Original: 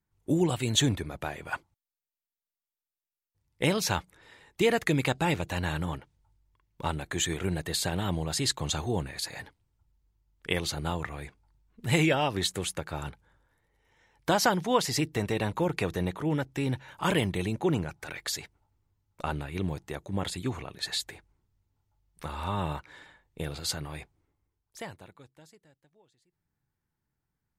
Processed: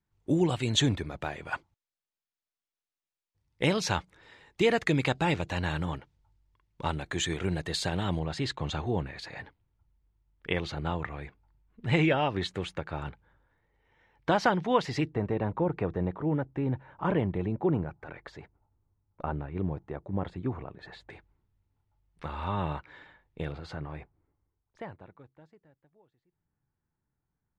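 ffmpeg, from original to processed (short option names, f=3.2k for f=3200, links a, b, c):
-af "asetnsamples=n=441:p=0,asendcmd='8.19 lowpass f 2900;15.12 lowpass f 1200;21.1 lowpass f 3100;23.52 lowpass f 1600',lowpass=5.9k"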